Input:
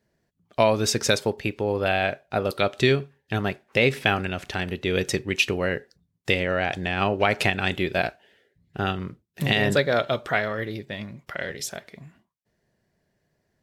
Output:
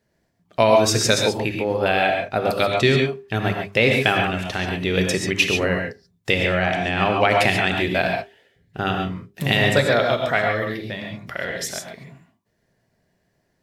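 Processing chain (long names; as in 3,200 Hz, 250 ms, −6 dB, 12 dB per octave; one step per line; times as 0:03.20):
mains-hum notches 50/100/150/200/250/300/350/400 Hz
reverb whose tail is shaped and stops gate 160 ms rising, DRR 2 dB
level +2.5 dB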